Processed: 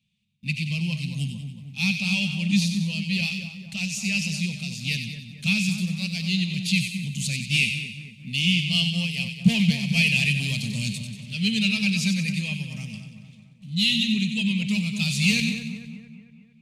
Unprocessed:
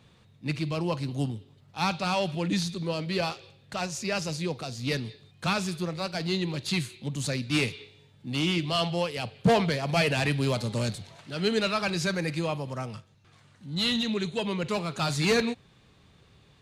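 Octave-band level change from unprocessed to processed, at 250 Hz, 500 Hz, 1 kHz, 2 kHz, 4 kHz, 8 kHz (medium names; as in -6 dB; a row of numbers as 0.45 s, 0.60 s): +5.5 dB, -18.5 dB, under -15 dB, +7.5 dB, +6.5 dB, +6.0 dB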